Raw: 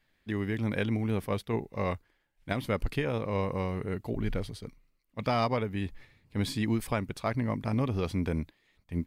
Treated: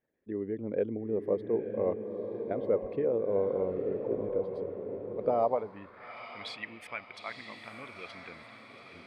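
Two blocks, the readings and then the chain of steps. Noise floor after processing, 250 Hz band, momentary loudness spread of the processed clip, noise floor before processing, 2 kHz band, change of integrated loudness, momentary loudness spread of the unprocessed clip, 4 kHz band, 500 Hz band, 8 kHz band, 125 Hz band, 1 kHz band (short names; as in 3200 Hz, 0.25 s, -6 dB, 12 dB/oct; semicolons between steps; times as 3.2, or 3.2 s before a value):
-53 dBFS, -6.5 dB, 16 LU, -73 dBFS, -6.0 dB, -1.0 dB, 9 LU, -6.5 dB, +4.0 dB, under -10 dB, -14.5 dB, -3.0 dB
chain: formant sharpening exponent 1.5; diffused feedback echo 0.924 s, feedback 51%, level -6 dB; band-pass sweep 470 Hz -> 2400 Hz, 5.33–6.23; gain +5.5 dB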